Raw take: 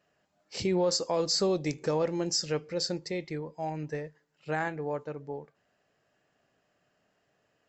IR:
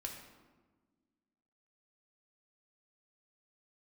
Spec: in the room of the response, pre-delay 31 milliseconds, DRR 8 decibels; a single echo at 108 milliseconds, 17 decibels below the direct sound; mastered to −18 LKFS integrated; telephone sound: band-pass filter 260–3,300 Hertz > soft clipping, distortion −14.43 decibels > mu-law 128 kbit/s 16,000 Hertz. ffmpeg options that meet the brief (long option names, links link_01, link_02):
-filter_complex "[0:a]aecho=1:1:108:0.141,asplit=2[link_01][link_02];[1:a]atrim=start_sample=2205,adelay=31[link_03];[link_02][link_03]afir=irnorm=-1:irlink=0,volume=-6.5dB[link_04];[link_01][link_04]amix=inputs=2:normalize=0,highpass=260,lowpass=3300,asoftclip=threshold=-25dB,volume=17dB" -ar 16000 -c:a pcm_mulaw